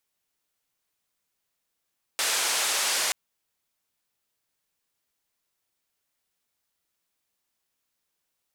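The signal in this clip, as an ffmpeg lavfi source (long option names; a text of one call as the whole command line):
ffmpeg -f lavfi -i "anoisesrc=color=white:duration=0.93:sample_rate=44100:seed=1,highpass=frequency=550,lowpass=frequency=8800,volume=-17dB" out.wav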